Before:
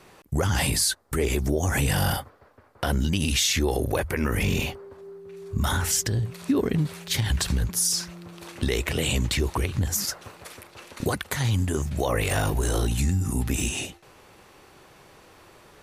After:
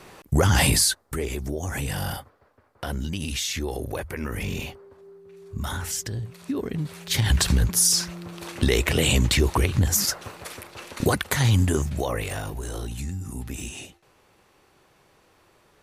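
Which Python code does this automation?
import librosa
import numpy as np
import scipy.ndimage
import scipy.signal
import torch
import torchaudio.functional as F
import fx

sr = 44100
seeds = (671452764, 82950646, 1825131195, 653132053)

y = fx.gain(x, sr, db=fx.line((0.73, 5.0), (1.3, -5.5), (6.75, -5.5), (7.3, 4.5), (11.68, 4.5), (12.44, -8.0)))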